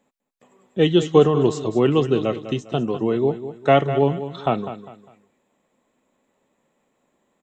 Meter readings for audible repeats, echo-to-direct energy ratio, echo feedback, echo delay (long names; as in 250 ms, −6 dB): 3, −11.5 dB, 32%, 201 ms